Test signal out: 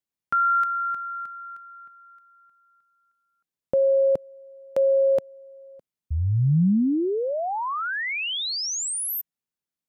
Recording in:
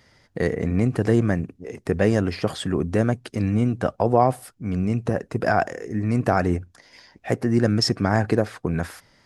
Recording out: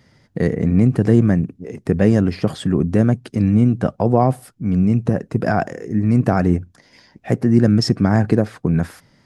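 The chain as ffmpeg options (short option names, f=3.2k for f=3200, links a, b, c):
-af "equalizer=f=170:t=o:w=2:g=10,volume=-1dB"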